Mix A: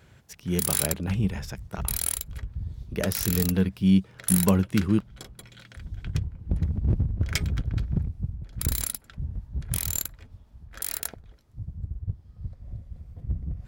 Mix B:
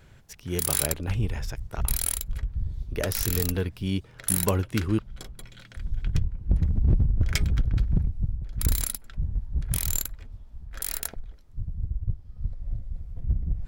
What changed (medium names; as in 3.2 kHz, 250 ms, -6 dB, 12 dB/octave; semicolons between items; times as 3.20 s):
speech: add peaking EQ 190 Hz -12.5 dB 0.33 oct; master: remove high-pass 65 Hz